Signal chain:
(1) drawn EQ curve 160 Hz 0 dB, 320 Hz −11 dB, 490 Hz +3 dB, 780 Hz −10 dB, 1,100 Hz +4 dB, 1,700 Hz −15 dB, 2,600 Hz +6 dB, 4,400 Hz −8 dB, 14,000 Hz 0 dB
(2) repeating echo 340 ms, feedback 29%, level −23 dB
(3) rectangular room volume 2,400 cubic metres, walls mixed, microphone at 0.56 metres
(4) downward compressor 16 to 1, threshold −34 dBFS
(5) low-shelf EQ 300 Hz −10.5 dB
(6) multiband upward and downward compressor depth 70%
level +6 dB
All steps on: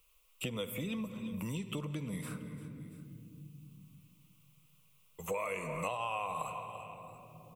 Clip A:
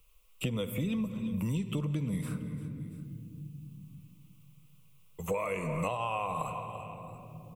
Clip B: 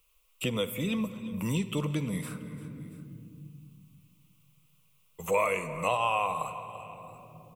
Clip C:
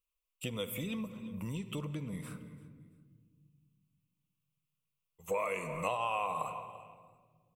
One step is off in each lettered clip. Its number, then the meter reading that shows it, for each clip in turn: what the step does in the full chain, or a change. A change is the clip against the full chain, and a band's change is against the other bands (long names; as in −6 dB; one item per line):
5, 125 Hz band +6.0 dB
4, average gain reduction 4.0 dB
6, change in momentary loudness spread +2 LU